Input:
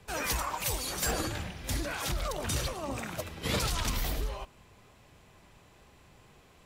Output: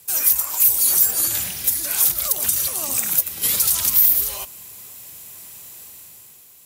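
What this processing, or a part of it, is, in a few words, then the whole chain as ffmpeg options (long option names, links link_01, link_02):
FM broadcast chain: -filter_complex "[0:a]highpass=78,dynaudnorm=framelen=110:gausssize=13:maxgain=9dB,acrossover=split=960|2200[link_01][link_02][link_03];[link_01]acompressor=threshold=-30dB:ratio=4[link_04];[link_02]acompressor=threshold=-35dB:ratio=4[link_05];[link_03]acompressor=threshold=-35dB:ratio=4[link_06];[link_04][link_05][link_06]amix=inputs=3:normalize=0,aemphasis=mode=production:type=75fm,alimiter=limit=-14.5dB:level=0:latency=1:release=319,asoftclip=type=hard:threshold=-16.5dB,lowpass=frequency=15000:width=0.5412,lowpass=frequency=15000:width=1.3066,aemphasis=mode=production:type=75fm,volume=-4dB"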